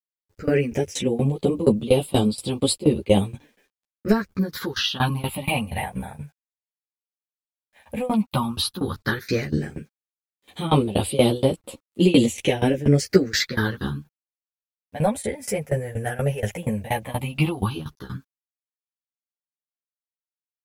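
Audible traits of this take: phasing stages 6, 0.11 Hz, lowest notch 290–1700 Hz; tremolo saw down 4.2 Hz, depth 95%; a quantiser's noise floor 12-bit, dither none; a shimmering, thickened sound

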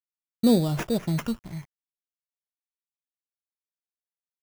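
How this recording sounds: a quantiser's noise floor 8-bit, dither none; phasing stages 12, 0.46 Hz, lowest notch 480–3300 Hz; aliases and images of a low sample rate 4.2 kHz, jitter 0%; random flutter of the level

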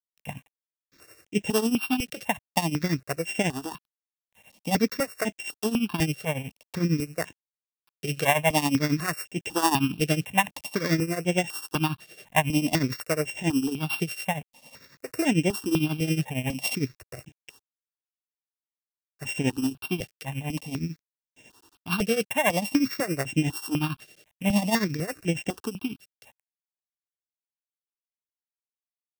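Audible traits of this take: a buzz of ramps at a fixed pitch in blocks of 16 samples; tremolo triangle 11 Hz, depth 85%; a quantiser's noise floor 10-bit, dither none; notches that jump at a steady rate 4 Hz 260–4400 Hz

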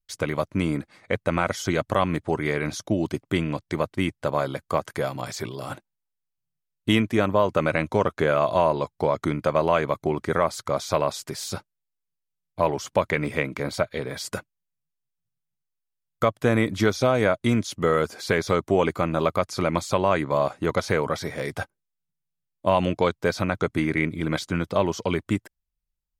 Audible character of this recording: noise floor -82 dBFS; spectral tilt -5.0 dB/octave

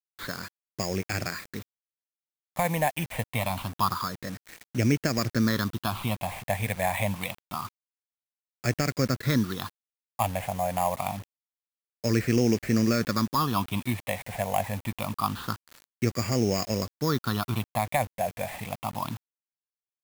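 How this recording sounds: aliases and images of a low sample rate 5.9 kHz, jitter 0%; phasing stages 6, 0.26 Hz, lowest notch 340–1000 Hz; a quantiser's noise floor 8-bit, dither none

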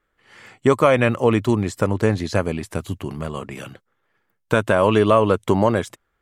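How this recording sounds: noise floor -72 dBFS; spectral tilt -6.0 dB/octave

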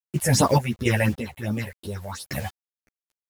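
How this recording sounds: phasing stages 6, 2.8 Hz, lowest notch 270–2300 Hz; a quantiser's noise floor 8-bit, dither none; random-step tremolo, depth 80%; a shimmering, thickened sound

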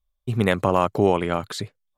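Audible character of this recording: noise floor -77 dBFS; spectral tilt -5.5 dB/octave

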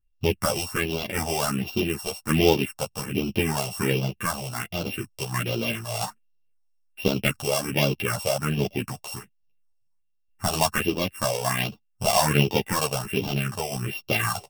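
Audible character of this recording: a buzz of ramps at a fixed pitch in blocks of 16 samples; phasing stages 4, 1.3 Hz, lowest notch 270–1800 Hz; random-step tremolo; a shimmering, thickened sound

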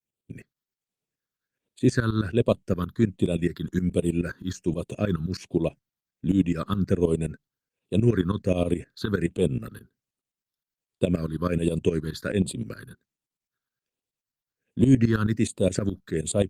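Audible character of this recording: tremolo saw up 9.5 Hz, depth 85%; phasing stages 6, 1.3 Hz, lowest notch 610–1600 Hz; Opus

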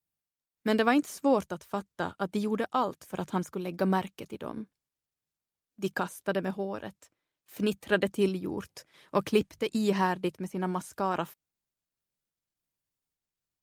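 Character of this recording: random-step tremolo; Opus

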